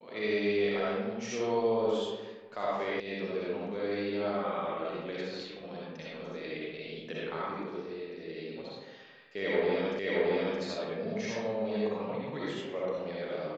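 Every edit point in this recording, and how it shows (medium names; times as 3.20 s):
3.00 s: sound stops dead
9.99 s: repeat of the last 0.62 s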